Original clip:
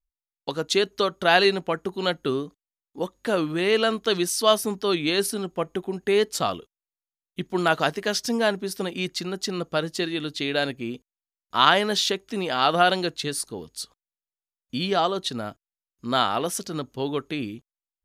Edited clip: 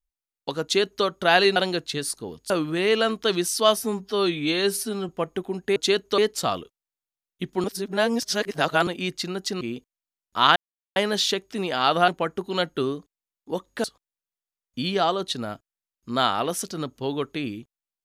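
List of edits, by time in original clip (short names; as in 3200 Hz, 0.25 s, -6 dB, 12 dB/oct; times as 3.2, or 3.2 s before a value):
0.63–1.05 copy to 6.15
1.56–3.32 swap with 12.86–13.8
4.62–5.48 stretch 1.5×
7.61–8.84 reverse
9.58–10.79 cut
11.74 insert silence 0.40 s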